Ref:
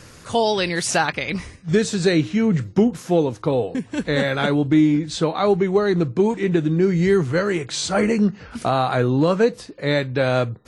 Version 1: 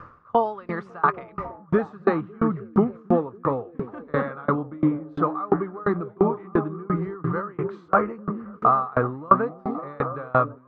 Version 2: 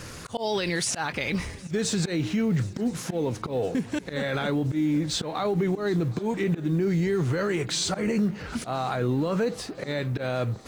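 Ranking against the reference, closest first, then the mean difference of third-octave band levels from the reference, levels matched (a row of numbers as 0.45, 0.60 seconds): 2, 1; 6.0, 10.5 decibels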